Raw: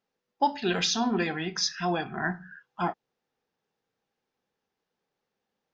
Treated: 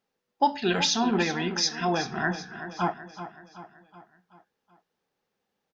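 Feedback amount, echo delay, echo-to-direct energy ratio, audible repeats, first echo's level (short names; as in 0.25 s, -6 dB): 51%, 0.378 s, -10.5 dB, 4, -12.0 dB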